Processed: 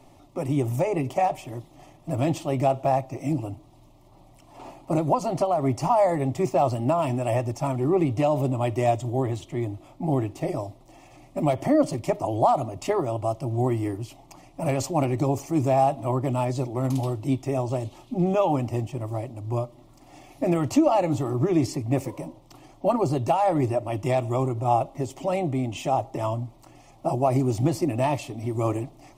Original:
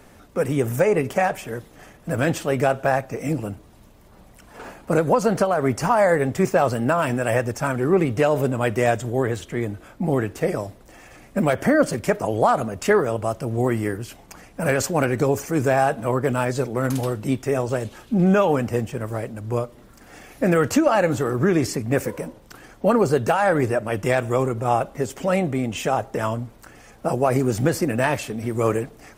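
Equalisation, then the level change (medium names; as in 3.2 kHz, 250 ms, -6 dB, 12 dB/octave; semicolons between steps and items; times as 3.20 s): low-pass 3.6 kHz 6 dB/octave; static phaser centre 310 Hz, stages 8; 0.0 dB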